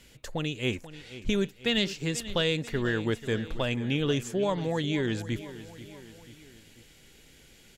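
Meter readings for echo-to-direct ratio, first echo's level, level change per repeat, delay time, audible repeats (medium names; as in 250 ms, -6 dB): -13.5 dB, -15.0 dB, -5.5 dB, 488 ms, 3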